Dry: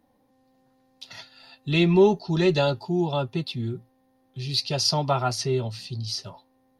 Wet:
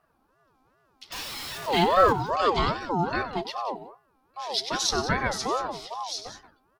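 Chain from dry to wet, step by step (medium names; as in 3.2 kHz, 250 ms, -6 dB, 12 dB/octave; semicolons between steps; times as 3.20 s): 1.12–2.13 s: jump at every zero crossing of -29 dBFS; multi-tap echo 96/182 ms -12.5/-13 dB; ring modulator with a swept carrier 730 Hz, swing 30%, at 2.5 Hz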